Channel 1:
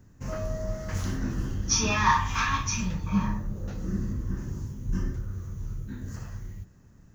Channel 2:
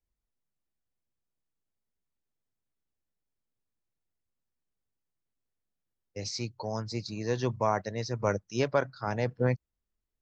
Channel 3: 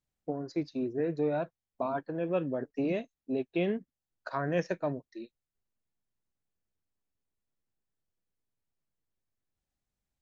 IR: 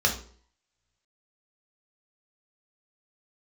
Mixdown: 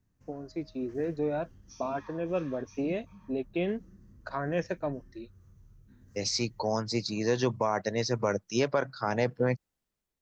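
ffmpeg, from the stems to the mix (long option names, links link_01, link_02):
-filter_complex "[0:a]bandreject=frequency=6900:width=13,acompressor=threshold=-40dB:ratio=3,volume=-19.5dB[link_01];[1:a]highpass=150,volume=1.5dB[link_02];[2:a]volume=-5dB[link_03];[link_01][link_02][link_03]amix=inputs=3:normalize=0,dynaudnorm=framelen=280:gausssize=5:maxgain=4.5dB,alimiter=limit=-16dB:level=0:latency=1:release=126"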